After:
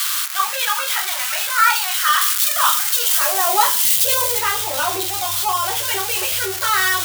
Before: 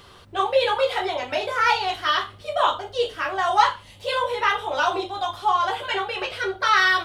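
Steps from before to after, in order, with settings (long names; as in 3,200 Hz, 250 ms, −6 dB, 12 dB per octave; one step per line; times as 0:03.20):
spike at every zero crossing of −10.5 dBFS
0:02.21–0:04.39: high-shelf EQ 5,200 Hz +6.5 dB
high-pass filter sweep 1,300 Hz → 78 Hz, 0:02.94–0:04.24
low-shelf EQ 73 Hz +8 dB
level −1 dB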